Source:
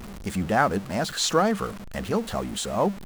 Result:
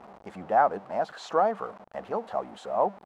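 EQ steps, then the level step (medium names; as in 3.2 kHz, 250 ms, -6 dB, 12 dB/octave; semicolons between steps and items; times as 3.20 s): band-pass filter 760 Hz, Q 2.2; +3.0 dB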